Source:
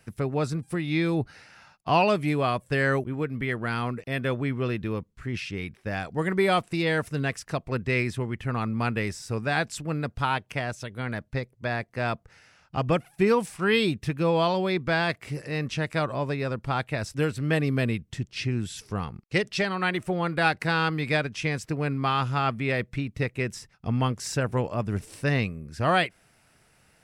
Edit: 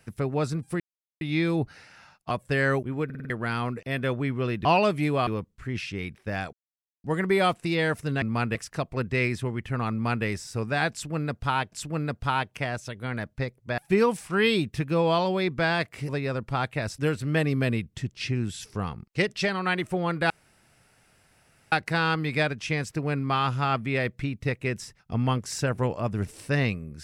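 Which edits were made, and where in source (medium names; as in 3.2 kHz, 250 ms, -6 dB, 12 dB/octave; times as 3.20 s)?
0.80 s: insert silence 0.41 s
1.90–2.52 s: move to 4.86 s
3.26 s: stutter in place 0.05 s, 5 plays
6.12 s: insert silence 0.51 s
8.67–9.00 s: copy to 7.30 s
9.67–10.47 s: loop, 2 plays
11.73–13.07 s: delete
15.38–16.25 s: delete
20.46 s: insert room tone 1.42 s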